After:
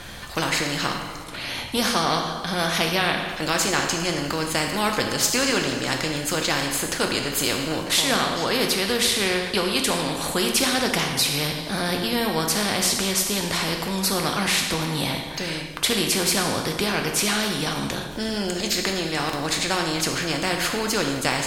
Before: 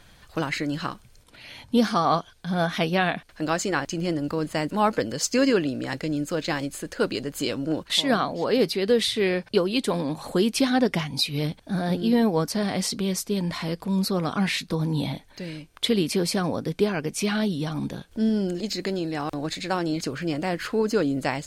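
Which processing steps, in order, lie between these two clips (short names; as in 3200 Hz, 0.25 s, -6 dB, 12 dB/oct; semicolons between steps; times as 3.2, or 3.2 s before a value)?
two-slope reverb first 0.72 s, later 2.5 s, DRR 4 dB; spectral compressor 2:1; gain +2 dB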